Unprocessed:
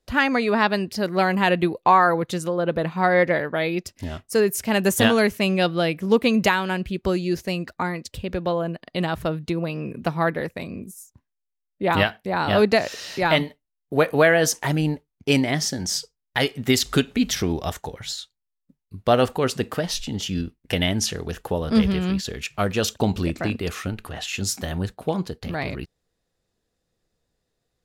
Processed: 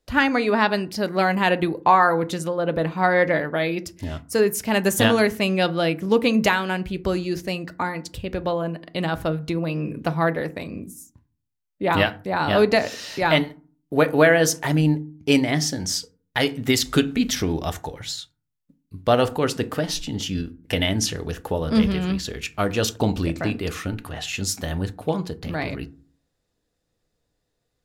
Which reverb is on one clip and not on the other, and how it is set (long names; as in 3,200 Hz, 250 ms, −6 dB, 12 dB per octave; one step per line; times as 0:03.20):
feedback delay network reverb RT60 0.4 s, low-frequency decay 1.55×, high-frequency decay 0.45×, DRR 11.5 dB